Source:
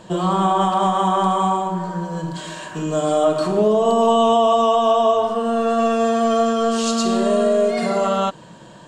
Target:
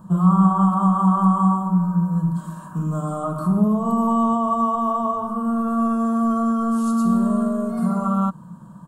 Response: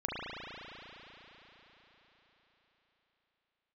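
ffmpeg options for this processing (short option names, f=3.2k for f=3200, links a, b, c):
-af "firequalizer=gain_entry='entry(120,0);entry(180,9);entry(360,-15);entry(690,-12);entry(1200,2);entry(1900,-25);entry(2800,-26);entry(7100,-15);entry(11000,7)':delay=0.05:min_phase=1"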